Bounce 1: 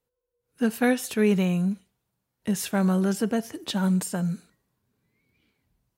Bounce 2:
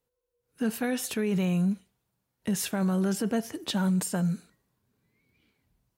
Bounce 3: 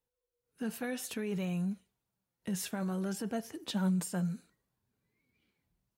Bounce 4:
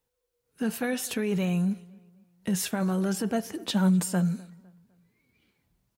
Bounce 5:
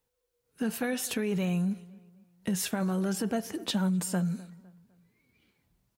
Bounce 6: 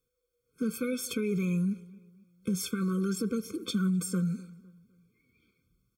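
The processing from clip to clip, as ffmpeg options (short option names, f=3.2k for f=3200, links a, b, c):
-af "alimiter=limit=-20dB:level=0:latency=1:release=16"
-af "flanger=delay=1.1:depth=4.8:regen=66:speed=0.62:shape=sinusoidal,volume=-3dB"
-filter_complex "[0:a]asplit=2[a][b];[b]adelay=253,lowpass=f=3.1k:p=1,volume=-23dB,asplit=2[c][d];[d]adelay=253,lowpass=f=3.1k:p=1,volume=0.39,asplit=2[e][f];[f]adelay=253,lowpass=f=3.1k:p=1,volume=0.39[g];[a][c][e][g]amix=inputs=4:normalize=0,volume=8dB"
-af "acompressor=threshold=-26dB:ratio=4"
-af "afftfilt=real='re*eq(mod(floor(b*sr/1024/520),2),0)':imag='im*eq(mod(floor(b*sr/1024/520),2),0)':win_size=1024:overlap=0.75"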